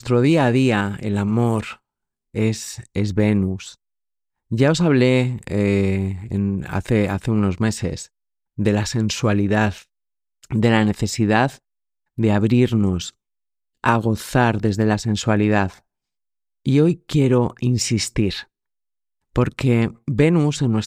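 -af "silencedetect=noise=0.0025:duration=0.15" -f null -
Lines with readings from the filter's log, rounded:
silence_start: 1.78
silence_end: 2.34 | silence_duration: 0.56
silence_start: 3.75
silence_end: 4.51 | silence_duration: 0.75
silence_start: 8.08
silence_end: 8.57 | silence_duration: 0.50
silence_start: 9.85
silence_end: 10.43 | silence_duration: 0.58
silence_start: 11.58
silence_end: 12.17 | silence_duration: 0.59
silence_start: 13.13
silence_end: 13.84 | silence_duration: 0.70
silence_start: 15.80
silence_end: 16.66 | silence_duration: 0.85
silence_start: 18.45
silence_end: 19.34 | silence_duration: 0.89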